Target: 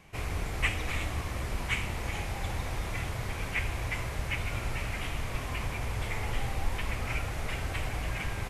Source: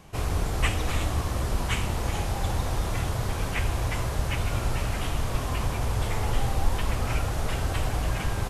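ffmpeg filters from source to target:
-af "equalizer=f=2.2k:w=2.1:g=10,volume=-7dB"

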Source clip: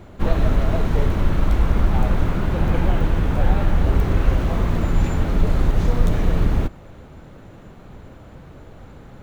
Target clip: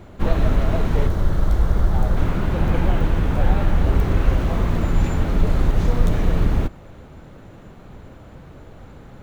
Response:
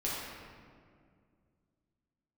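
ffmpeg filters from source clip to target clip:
-filter_complex "[0:a]asettb=1/sr,asplit=3[a][b][c];[a]atrim=end=1.074[d];[b]atrim=start=1.07:end=2.17,asetpts=PTS-STARTPTS,afade=t=in:d=0.004:c=qsin,afade=t=out:st=1.096:d=0.004:c=qsin,equalizer=f=250:t=o:w=0.67:g=-6,equalizer=f=1k:t=o:w=0.67:g=-3,equalizer=f=2.5k:t=o:w=0.67:g=-10[e];[c]atrim=start=2.166[f];[d][e]acrossfade=d=0.004:c1=hsin:c2=qsin[g];[g][f]acrossfade=d=0.004:c1=qsin:c2=hsin"

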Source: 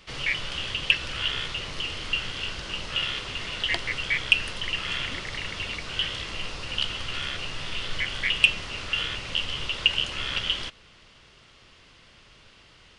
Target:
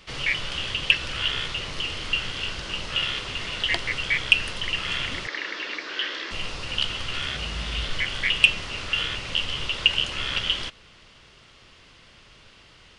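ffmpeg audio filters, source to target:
-filter_complex "[0:a]asettb=1/sr,asplit=3[a][b][c];[a]atrim=end=5.274[d];[b]atrim=start=5.27:end=6.31,asetpts=PTS-STARTPTS,afade=t=in:d=0.004:c=qsin,afade=t=out:st=1.036:d=0.004:c=qsin,highpass=f=290:w=0.5412,highpass=f=290:w=1.3066,equalizer=f=320:t=q:w=4:g=7,equalizer=f=740:t=q:w=4:g=-4,equalizer=f=1.7k:t=q:w=4:g=8,equalizer=f=2.9k:t=q:w=4:g=-5,lowpass=f=5.7k:w=0.5412,lowpass=f=5.7k:w=1.3066[e];[c]atrim=start=6.306[f];[d][e]acrossfade=d=0.004:c1=hsin:c2=qsin[g];[g][f]acrossfade=d=0.004:c1=qsin:c2=hsin,asettb=1/sr,asplit=3[h][i][j];[h]atrim=end=7.274[k];[i]atrim=start=7.27:end=7.89,asetpts=PTS-STARTPTS,afade=t=in:d=0.004:c=qsin,afade=t=out:st=0.616:d=0.004:c=qsin,afreqshift=47[l];[j]atrim=start=7.886[m];[k][l]acrossfade=d=0.004:c1=hsin:c2=qsin[n];[n][m]acrossfade=d=0.004:c1=qsin:c2=hsin,volume=2dB"

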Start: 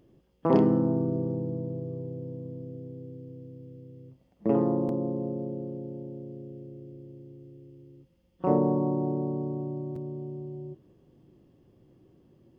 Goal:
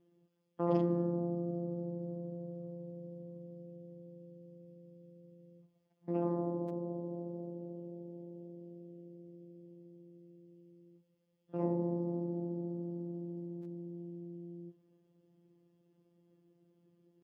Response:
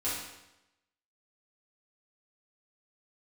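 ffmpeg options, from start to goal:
-af "afftfilt=real='hypot(re,im)*cos(PI*b)':imag='0':win_size=1024:overlap=0.75,atempo=0.73,highpass=70,volume=-6.5dB"

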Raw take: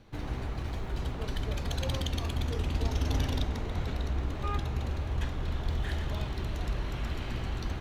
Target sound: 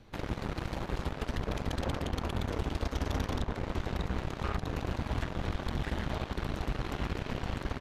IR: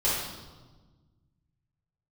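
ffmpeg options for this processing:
-filter_complex "[0:a]acrossover=split=720|1900[a][b][c];[a]acompressor=threshold=-31dB:ratio=4[d];[b]acompressor=threshold=-47dB:ratio=4[e];[c]acompressor=threshold=-54dB:ratio=4[f];[d][e][f]amix=inputs=3:normalize=0,aeval=exprs='0.0708*(cos(1*acos(clip(val(0)/0.0708,-1,1)))-cos(1*PI/2))+0.00631*(cos(5*acos(clip(val(0)/0.0708,-1,1)))-cos(5*PI/2))+0.0251*(cos(7*acos(clip(val(0)/0.0708,-1,1)))-cos(7*PI/2))':c=same,aresample=32000,aresample=44100"

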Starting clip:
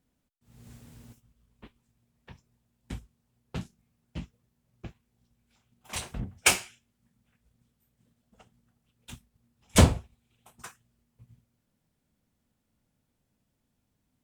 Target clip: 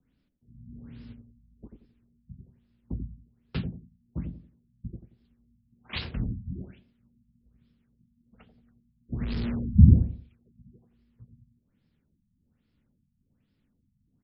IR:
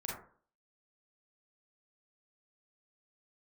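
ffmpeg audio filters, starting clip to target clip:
-filter_complex "[0:a]asettb=1/sr,asplit=3[a][b][c];[a]atrim=end=9.124[d];[b]atrim=start=9.12:end=9.93,asetpts=PTS-STARTPTS,afade=t=in:d=0.004:c=qsin,afade=t=out:st=0.806:d=0.004:c=qsin,aeval=exprs='val(0)+0.5*0.0335*sgn(val(0))':c=same[e];[c]atrim=start=9.926[f];[d][e]acrossfade=d=0.004:c1=hsin:c2=qsin[g];[g][f]acrossfade=d=0.004:c1=qsin:c2=hsin,acrossover=split=290|3000[h][i][j];[i]acompressor=threshold=-34dB:ratio=6[k];[h][k][j]amix=inputs=3:normalize=0,acrossover=split=510|1100[l][m][n];[l]aecho=1:1:89|178|267|356:0.631|0.189|0.0568|0.017[o];[m]acrusher=bits=2:mix=0:aa=0.5[p];[o][p][n]amix=inputs=3:normalize=0,afftfilt=real='re*lt(b*sr/1024,220*pow(5500/220,0.5+0.5*sin(2*PI*1.2*pts/sr)))':imag='im*lt(b*sr/1024,220*pow(5500/220,0.5+0.5*sin(2*PI*1.2*pts/sr)))':win_size=1024:overlap=0.75,volume=4.5dB"

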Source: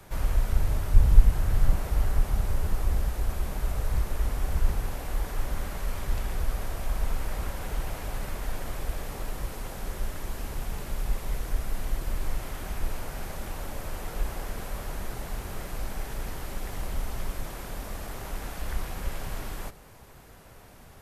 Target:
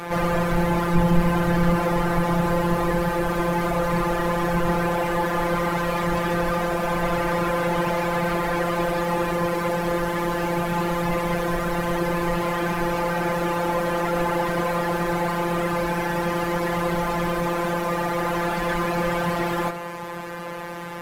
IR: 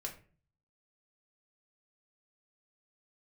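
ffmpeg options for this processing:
-filter_complex "[0:a]afftfilt=real='hypot(re,im)*cos(PI*b)':imag='0':win_size=1024:overlap=0.75,asplit=2[a][b];[b]highpass=f=720:p=1,volume=39dB,asoftclip=type=tanh:threshold=-6.5dB[c];[a][c]amix=inputs=2:normalize=0,lowpass=f=1.1k:p=1,volume=-6dB,bandreject=f=76.59:t=h:w=4,bandreject=f=153.18:t=h:w=4,bandreject=f=229.77:t=h:w=4,bandreject=f=306.36:t=h:w=4,bandreject=f=382.95:t=h:w=4,bandreject=f=459.54:t=h:w=4,bandreject=f=536.13:t=h:w=4,bandreject=f=612.72:t=h:w=4,bandreject=f=689.31:t=h:w=4,bandreject=f=765.9:t=h:w=4,bandreject=f=842.49:t=h:w=4,bandreject=f=919.08:t=h:w=4,bandreject=f=995.67:t=h:w=4,bandreject=f=1.07226k:t=h:w=4,bandreject=f=1.14885k:t=h:w=4,bandreject=f=1.22544k:t=h:w=4,bandreject=f=1.30203k:t=h:w=4,bandreject=f=1.37862k:t=h:w=4,bandreject=f=1.45521k:t=h:w=4,bandreject=f=1.5318k:t=h:w=4,bandreject=f=1.60839k:t=h:w=4,bandreject=f=1.68498k:t=h:w=4,bandreject=f=1.76157k:t=h:w=4,bandreject=f=1.83816k:t=h:w=4"

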